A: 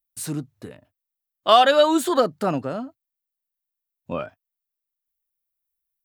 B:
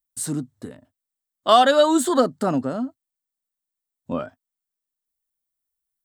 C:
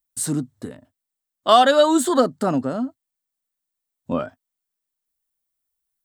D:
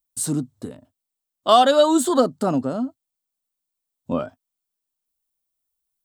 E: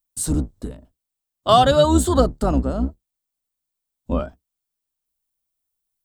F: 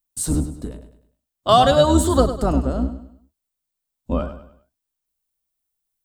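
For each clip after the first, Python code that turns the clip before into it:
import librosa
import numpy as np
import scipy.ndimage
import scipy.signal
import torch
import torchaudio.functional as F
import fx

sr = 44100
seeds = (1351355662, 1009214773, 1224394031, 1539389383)

y1 = fx.graphic_eq_31(x, sr, hz=(250, 2500, 8000, 16000), db=(8, -9, 8, -6))
y2 = fx.rider(y1, sr, range_db=3, speed_s=2.0)
y3 = fx.peak_eq(y2, sr, hz=1800.0, db=-7.0, octaves=0.66)
y4 = fx.octave_divider(y3, sr, octaves=2, level_db=2.0)
y5 = fx.echo_feedback(y4, sr, ms=101, feedback_pct=38, wet_db=-11.0)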